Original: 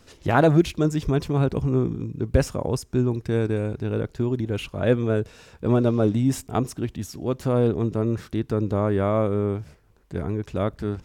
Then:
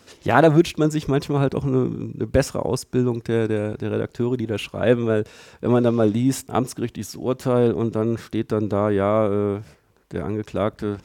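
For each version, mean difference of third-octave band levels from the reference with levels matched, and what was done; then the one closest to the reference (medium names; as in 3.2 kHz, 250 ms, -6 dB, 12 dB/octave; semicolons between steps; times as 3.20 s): 1.5 dB: high-pass 180 Hz 6 dB/octave; trim +4 dB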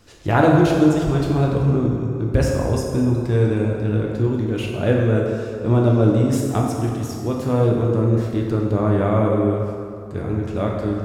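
5.5 dB: plate-style reverb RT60 2.3 s, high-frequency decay 0.6×, DRR -1.5 dB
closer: first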